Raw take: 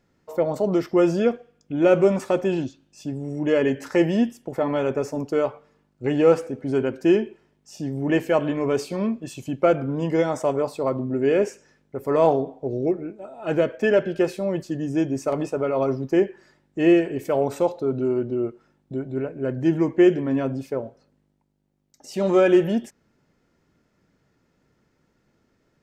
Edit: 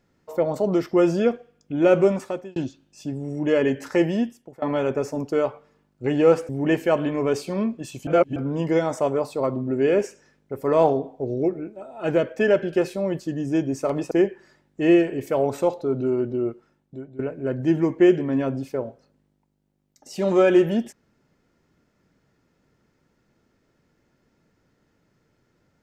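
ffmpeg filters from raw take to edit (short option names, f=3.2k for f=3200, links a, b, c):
-filter_complex "[0:a]asplit=8[a][b][c][d][e][f][g][h];[a]atrim=end=2.56,asetpts=PTS-STARTPTS,afade=t=out:st=2.03:d=0.53[i];[b]atrim=start=2.56:end=4.62,asetpts=PTS-STARTPTS,afade=t=in:d=0.004:c=hsin,afade=t=out:st=1.2:d=0.86:c=qsin:silence=0.0707946[j];[c]atrim=start=4.62:end=6.492,asetpts=PTS-STARTPTS,afade=t=in:d=0.004:c=hsin:silence=0.0707946[k];[d]atrim=start=7.918:end=9.502[l];[e]atrim=start=9.498:end=9.792,asetpts=PTS-STARTPTS,areverse[m];[f]atrim=start=9.788:end=15.542[n];[g]atrim=start=16.088:end=19.17,asetpts=PTS-STARTPTS,afade=t=out:st=2.392:d=0.69:silence=0.177828[o];[h]atrim=start=19.17,asetpts=PTS-STARTPTS,afade=t=in:d=0.004:c=hsin:silence=0.177828[p];[i][j][k]concat=n=3:v=0:a=1[q];[q][l]acrossfade=d=0.004:c1=hsin:c2=hsin[r];[r][m]acrossfade=d=0.004:c1=hsin:c2=hsin[s];[s][n]acrossfade=d=0.004:c1=hsin:c2=hsin[t];[o][p]concat=n=2:v=0:a=1[u];[t][u]acrossfade=d=0.004:c1=hsin:c2=hsin"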